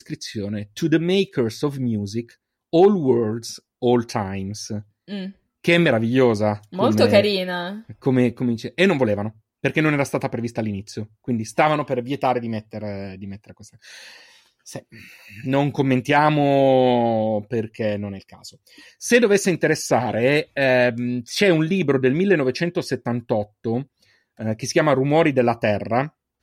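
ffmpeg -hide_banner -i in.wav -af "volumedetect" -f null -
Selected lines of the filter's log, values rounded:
mean_volume: -21.0 dB
max_volume: -2.8 dB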